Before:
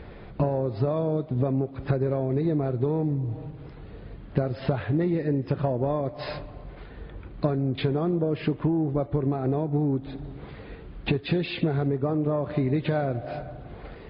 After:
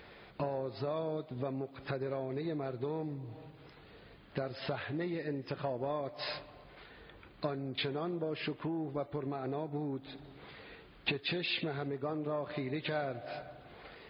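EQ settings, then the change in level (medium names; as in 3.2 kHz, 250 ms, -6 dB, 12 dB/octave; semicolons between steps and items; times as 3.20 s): tilt EQ +3.5 dB/octave; -6.0 dB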